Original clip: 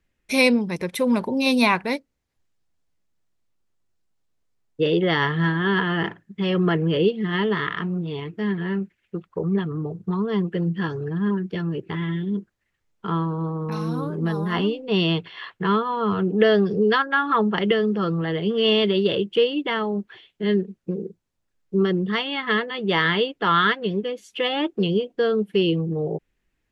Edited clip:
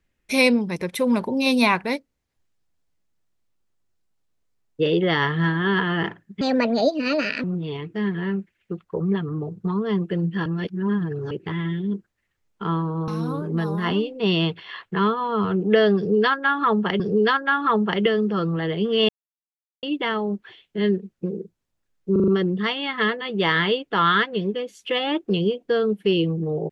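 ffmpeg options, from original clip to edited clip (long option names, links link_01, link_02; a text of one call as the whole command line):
ffmpeg -i in.wav -filter_complex "[0:a]asplit=13[link_01][link_02][link_03][link_04][link_05][link_06][link_07][link_08][link_09][link_10][link_11][link_12][link_13];[link_01]atrim=end=6.414[link_14];[link_02]atrim=start=6.41:end=7.87,asetpts=PTS-STARTPTS,asetrate=62622,aresample=44100,atrim=end_sample=45342,asetpts=PTS-STARTPTS[link_15];[link_03]atrim=start=7.866:end=10.892[link_16];[link_04]atrim=start=10.888:end=11.742,asetpts=PTS-STARTPTS,areverse[link_17];[link_05]atrim=start=11.738:end=13.512[link_18];[link_06]atrim=start=13.758:end=17.682[link_19];[link_07]atrim=start=16.648:end=18.74,asetpts=PTS-STARTPTS,afade=type=out:start_time=2.088:duration=0.004:curve=hsin[link_20];[link_08]atrim=start=18.74:end=19.48,asetpts=PTS-STARTPTS,volume=0[link_21];[link_09]atrim=start=19.48:end=21.812,asetpts=PTS-STARTPTS,afade=type=in:duration=0.004:curve=hsin[link_22];[link_10]atrim=start=21.768:end=21.812[link_23];[link_11]atrim=start=21.768:end=21.812[link_24];[link_12]atrim=start=21.768:end=21.812[link_25];[link_13]atrim=start=21.768[link_26];[link_14][link_15]acrossfade=duration=0.004:curve1=hsin:curve2=hsin[link_27];[link_27][link_16]acrossfade=duration=0.004:curve1=hsin:curve2=hsin[link_28];[link_28][link_17]acrossfade=duration=0.004:curve1=hsin:curve2=hsin[link_29];[link_29][link_18]acrossfade=duration=0.004:curve1=hsin:curve2=hsin[link_30];[link_30][link_19]acrossfade=duration=0.004:curve1=hsin:curve2=hsin[link_31];[link_20][link_21][link_22]concat=n=3:v=0:a=1[link_32];[link_31][link_32]acrossfade=duration=0.004:curve1=hsin:curve2=hsin[link_33];[link_33][link_23]acrossfade=duration=0.004:curve1=hsin:curve2=hsin[link_34];[link_34][link_24]acrossfade=duration=0.004:curve1=hsin:curve2=hsin[link_35];[link_35][link_25]acrossfade=duration=0.004:curve1=hsin:curve2=hsin[link_36];[link_36][link_26]acrossfade=duration=0.004:curve1=hsin:curve2=hsin" out.wav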